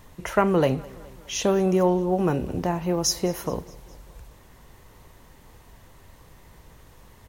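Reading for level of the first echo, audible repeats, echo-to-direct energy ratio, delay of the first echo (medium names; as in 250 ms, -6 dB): -22.5 dB, 3, -21.0 dB, 208 ms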